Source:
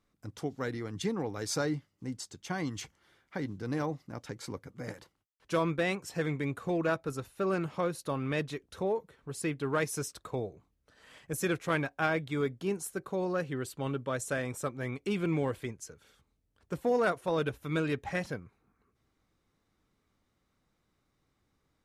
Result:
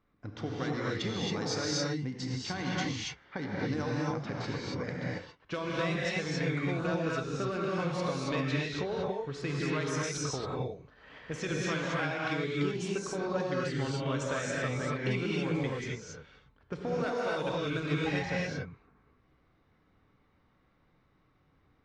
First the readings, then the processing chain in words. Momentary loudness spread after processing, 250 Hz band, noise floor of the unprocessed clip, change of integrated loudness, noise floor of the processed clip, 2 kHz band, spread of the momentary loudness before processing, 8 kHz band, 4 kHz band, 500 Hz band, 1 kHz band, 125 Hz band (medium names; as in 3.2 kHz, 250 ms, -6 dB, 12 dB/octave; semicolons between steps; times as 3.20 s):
8 LU, +1.0 dB, -78 dBFS, +0.5 dB, -69 dBFS, +2.0 dB, 12 LU, +0.5 dB, +6.5 dB, -0.5 dB, 0.0 dB, +3.0 dB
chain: low-pass 6.4 kHz 24 dB/octave; level-controlled noise filter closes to 1.8 kHz, open at -26 dBFS; treble shelf 2.7 kHz +9.5 dB; compression 5:1, threshold -37 dBFS, peak gain reduction 13.5 dB; gated-style reverb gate 300 ms rising, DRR -4.5 dB; trim +2.5 dB